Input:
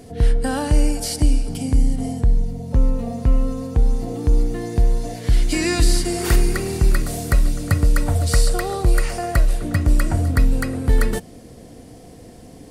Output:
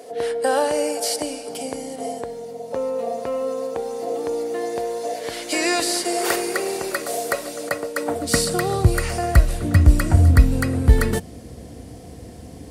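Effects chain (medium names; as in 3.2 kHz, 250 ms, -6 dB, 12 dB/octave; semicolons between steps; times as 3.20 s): high-pass sweep 530 Hz -> 63 Hz, 7.91–9.07 s; 7.69–8.45 s: three bands expanded up and down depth 100%; trim +1.5 dB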